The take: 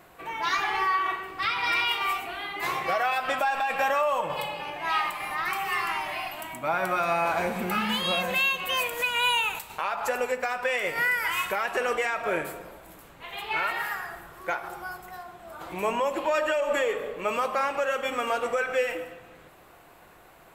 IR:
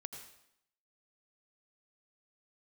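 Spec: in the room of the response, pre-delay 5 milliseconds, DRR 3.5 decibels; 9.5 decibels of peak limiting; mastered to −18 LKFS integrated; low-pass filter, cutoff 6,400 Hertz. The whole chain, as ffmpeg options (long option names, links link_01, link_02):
-filter_complex "[0:a]lowpass=6400,alimiter=level_in=1dB:limit=-24dB:level=0:latency=1,volume=-1dB,asplit=2[link_01][link_02];[1:a]atrim=start_sample=2205,adelay=5[link_03];[link_02][link_03]afir=irnorm=-1:irlink=0,volume=-0.5dB[link_04];[link_01][link_04]amix=inputs=2:normalize=0,volume=13.5dB"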